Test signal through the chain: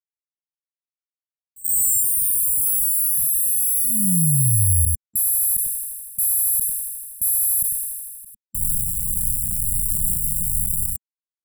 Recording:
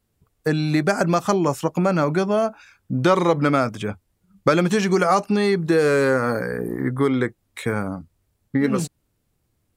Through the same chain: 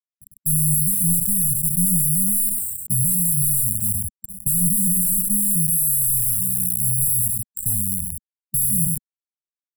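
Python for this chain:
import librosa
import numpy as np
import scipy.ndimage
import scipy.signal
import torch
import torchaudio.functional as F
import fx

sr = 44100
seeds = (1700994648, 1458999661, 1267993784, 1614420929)

p1 = 10.0 ** (-12.0 / 20.0) * np.tanh(x / 10.0 ** (-12.0 / 20.0))
p2 = x + (p1 * 10.0 ** (-6.5 / 20.0))
p3 = (np.kron(scipy.signal.resample_poly(p2, 1, 8), np.eye(8)[0]) * 8)[:len(p2)]
p4 = fx.high_shelf(p3, sr, hz=10000.0, db=-7.0)
p5 = fx.quant_companded(p4, sr, bits=2)
p6 = fx.brickwall_bandstop(p5, sr, low_hz=210.0, high_hz=7400.0)
p7 = fx.low_shelf(p6, sr, hz=96.0, db=5.0)
p8 = p7 + fx.echo_single(p7, sr, ms=99, db=-20.0, dry=0)
p9 = fx.sustainer(p8, sr, db_per_s=33.0)
y = p9 * 10.0 ** (-7.5 / 20.0)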